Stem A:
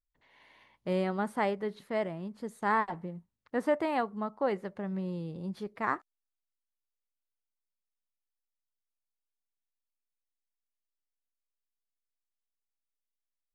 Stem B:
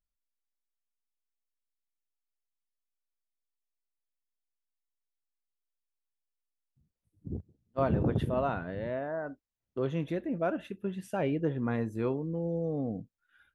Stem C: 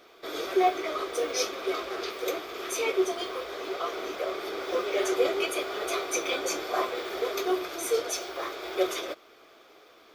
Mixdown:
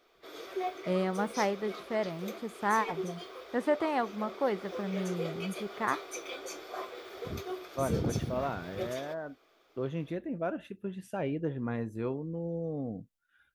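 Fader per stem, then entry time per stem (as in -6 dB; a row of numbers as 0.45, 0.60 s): 0.0, -3.0, -11.5 dB; 0.00, 0.00, 0.00 s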